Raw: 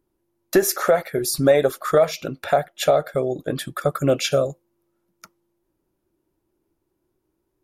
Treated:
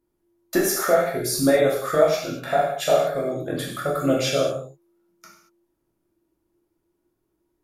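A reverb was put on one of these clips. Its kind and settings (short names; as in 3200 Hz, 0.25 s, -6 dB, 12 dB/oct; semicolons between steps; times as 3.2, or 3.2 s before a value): non-linear reverb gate 0.26 s falling, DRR -5 dB; gain -6.5 dB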